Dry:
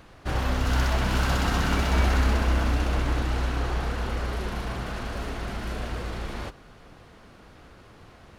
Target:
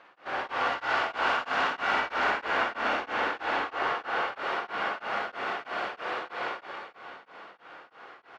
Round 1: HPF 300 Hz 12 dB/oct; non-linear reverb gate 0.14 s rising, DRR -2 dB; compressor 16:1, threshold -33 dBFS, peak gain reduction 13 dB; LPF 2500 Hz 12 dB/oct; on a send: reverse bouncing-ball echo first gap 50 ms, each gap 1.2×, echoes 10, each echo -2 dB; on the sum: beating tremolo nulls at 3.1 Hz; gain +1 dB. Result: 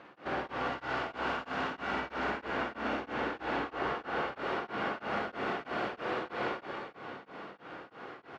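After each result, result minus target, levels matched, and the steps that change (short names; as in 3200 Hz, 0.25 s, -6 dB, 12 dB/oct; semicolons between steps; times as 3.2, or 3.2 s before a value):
250 Hz band +10.0 dB; compressor: peak gain reduction +9.5 dB
change: HPF 660 Hz 12 dB/oct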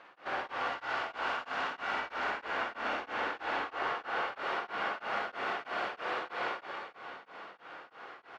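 compressor: peak gain reduction +8 dB
change: compressor 16:1, threshold -24.5 dBFS, peak gain reduction 3.5 dB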